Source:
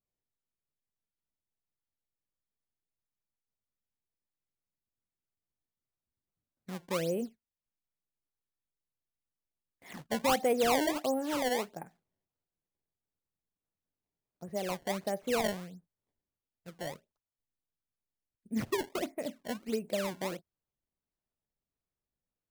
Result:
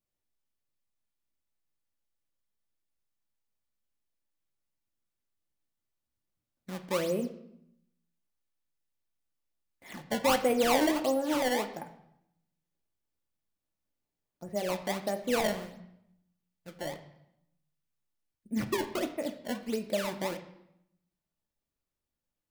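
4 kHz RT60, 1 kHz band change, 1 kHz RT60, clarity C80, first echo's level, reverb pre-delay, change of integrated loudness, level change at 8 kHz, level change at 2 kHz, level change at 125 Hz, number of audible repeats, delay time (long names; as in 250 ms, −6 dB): 0.70 s, +1.5 dB, 0.80 s, 14.0 dB, no echo audible, 3 ms, +2.5 dB, +1.5 dB, +2.5 dB, +1.0 dB, no echo audible, no echo audible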